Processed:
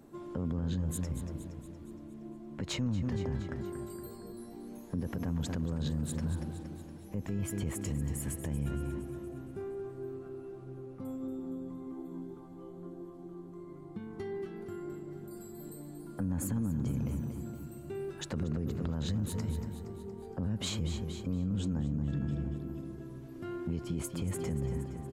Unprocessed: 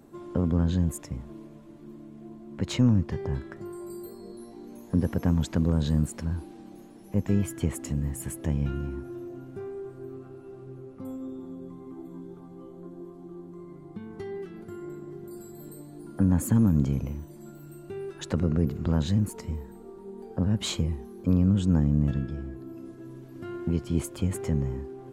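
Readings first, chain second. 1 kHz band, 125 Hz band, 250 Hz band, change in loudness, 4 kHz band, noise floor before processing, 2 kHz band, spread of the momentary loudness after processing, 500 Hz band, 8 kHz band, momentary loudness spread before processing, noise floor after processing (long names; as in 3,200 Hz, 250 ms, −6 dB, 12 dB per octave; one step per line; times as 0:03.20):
−5.5 dB, −7.5 dB, −8.0 dB, −9.0 dB, −4.0 dB, −47 dBFS, −4.5 dB, 13 LU, −5.0 dB, −3.0 dB, 21 LU, −48 dBFS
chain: on a send: repeating echo 233 ms, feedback 54%, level −10.5 dB
on the sum: brickwall limiter −23 dBFS, peak gain reduction 11.5 dB
level −2.5 dB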